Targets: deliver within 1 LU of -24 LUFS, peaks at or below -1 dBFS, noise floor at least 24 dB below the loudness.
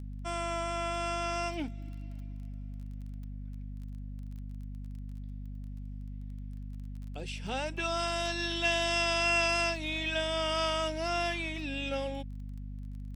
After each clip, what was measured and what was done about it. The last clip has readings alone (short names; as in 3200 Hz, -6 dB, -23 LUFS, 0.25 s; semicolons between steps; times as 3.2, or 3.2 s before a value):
ticks 19/s; hum 50 Hz; harmonics up to 250 Hz; hum level -38 dBFS; loudness -31.5 LUFS; peak -16.0 dBFS; loudness target -24.0 LUFS
-> de-click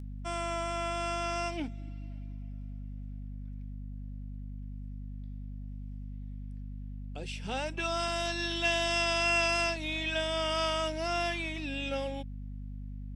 ticks 0.076/s; hum 50 Hz; harmonics up to 250 Hz; hum level -38 dBFS
-> notches 50/100/150/200/250 Hz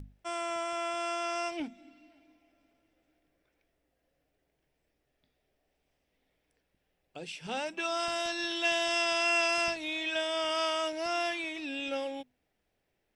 hum none; loudness -31.0 LUFS; peak -17.0 dBFS; loudness target -24.0 LUFS
-> gain +7 dB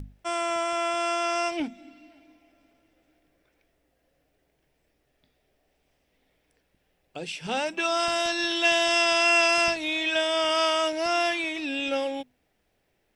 loudness -24.0 LUFS; peak -10.0 dBFS; noise floor -73 dBFS